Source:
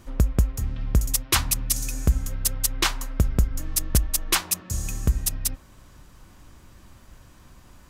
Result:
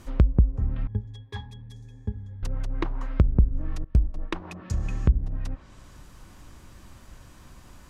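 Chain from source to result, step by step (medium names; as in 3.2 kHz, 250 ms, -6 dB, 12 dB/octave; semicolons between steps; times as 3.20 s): 0.87–2.43 s: pitch-class resonator G#, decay 0.16 s; 3.84–4.35 s: gate with hold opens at -15 dBFS; low-pass that closes with the level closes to 380 Hz, closed at -18.5 dBFS; trim +1.5 dB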